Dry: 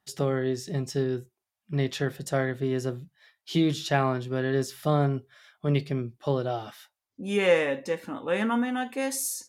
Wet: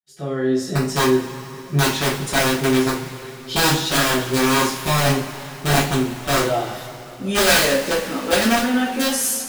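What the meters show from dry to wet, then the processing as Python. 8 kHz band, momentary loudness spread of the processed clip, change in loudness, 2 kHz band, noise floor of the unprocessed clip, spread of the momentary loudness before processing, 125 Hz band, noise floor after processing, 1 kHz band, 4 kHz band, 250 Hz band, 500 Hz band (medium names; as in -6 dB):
+14.0 dB, 12 LU, +9.0 dB, +12.5 dB, under -85 dBFS, 8 LU, +5.0 dB, -37 dBFS, +11.0 dB, +16.0 dB, +8.0 dB, +6.0 dB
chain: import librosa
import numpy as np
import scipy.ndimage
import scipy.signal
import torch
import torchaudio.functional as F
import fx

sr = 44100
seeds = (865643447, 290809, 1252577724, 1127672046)

y = fx.fade_in_head(x, sr, length_s=0.71)
y = (np.mod(10.0 ** (19.0 / 20.0) * y + 1.0, 2.0) - 1.0) / 10.0 ** (19.0 / 20.0)
y = fx.rev_double_slope(y, sr, seeds[0], early_s=0.38, late_s=3.6, knee_db=-19, drr_db=-9.0)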